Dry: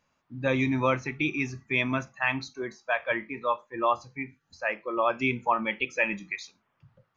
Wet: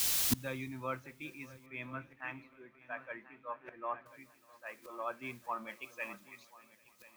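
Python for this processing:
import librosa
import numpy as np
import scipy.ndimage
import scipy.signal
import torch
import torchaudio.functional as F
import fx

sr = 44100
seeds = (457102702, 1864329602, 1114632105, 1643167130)

y = fx.peak_eq(x, sr, hz=1400.0, db=5.5, octaves=0.39)
y = fx.echo_feedback(y, sr, ms=1039, feedback_pct=24, wet_db=-12.5)
y = fx.dmg_noise_colour(y, sr, seeds[0], colour='white', level_db=-47.0)
y = fx.lowpass(y, sr, hz=2800.0, slope=24, at=(1.66, 4.06))
y = fx.echo_swing(y, sr, ms=797, ratio=3, feedback_pct=55, wet_db=-18.0)
y = fx.gate_flip(y, sr, shuts_db=-31.0, range_db=-27)
y = fx.band_widen(y, sr, depth_pct=70)
y = F.gain(torch.from_numpy(y), 10.0).numpy()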